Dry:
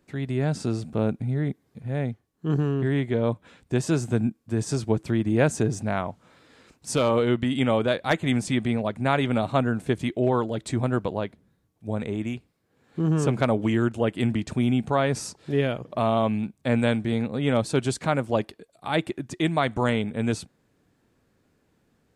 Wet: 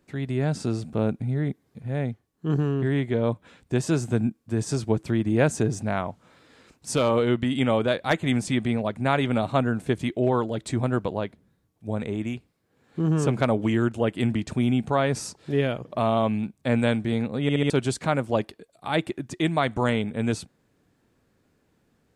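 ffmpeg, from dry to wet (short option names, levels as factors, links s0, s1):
-filter_complex "[0:a]asplit=5[s0][s1][s2][s3][s4];[s0]atrim=end=17.492[s5];[s1]atrim=start=17.418:end=17.492[s6];[s2]atrim=start=17.418:end=17.492[s7];[s3]atrim=start=17.418:end=17.492[s8];[s4]atrim=start=17.698[s9];[s5][s6]acrossfade=d=0.004:c1=hsin:c2=hsin[s10];[s10][s7]acrossfade=d=0.004:c1=hsin:c2=hsin[s11];[s11][s8]acrossfade=d=0.004:c1=hsin:c2=hsin[s12];[s12][s9]acrossfade=d=0.004:c1=hsin:c2=hsin"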